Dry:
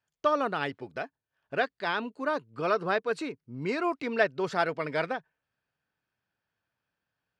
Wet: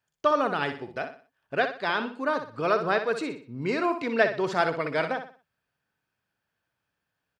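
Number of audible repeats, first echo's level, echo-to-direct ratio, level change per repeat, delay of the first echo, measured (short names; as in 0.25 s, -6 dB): 3, -9.0 dB, -8.5 dB, -9.0 dB, 61 ms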